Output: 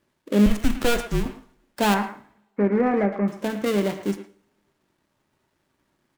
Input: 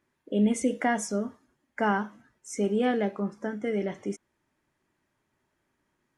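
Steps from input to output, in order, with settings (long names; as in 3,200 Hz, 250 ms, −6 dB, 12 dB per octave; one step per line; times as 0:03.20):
gap after every zero crossing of 0.23 ms
0:01.94–0:03.28: elliptic low-pass filter 2,200 Hz
in parallel at −6 dB: asymmetric clip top −24.5 dBFS
0:00.46–0:01.26: on the sum: frequency shifter −240 Hz
far-end echo of a speakerphone 110 ms, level −11 dB
on a send at −12 dB: convolution reverb, pre-delay 3 ms
on the sum: level +3 dB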